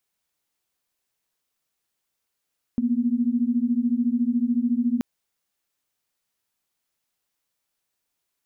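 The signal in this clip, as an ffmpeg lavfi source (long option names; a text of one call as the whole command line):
ffmpeg -f lavfi -i "aevalsrc='0.075*(sin(2*PI*233.08*t)+sin(2*PI*246.94*t))':duration=2.23:sample_rate=44100" out.wav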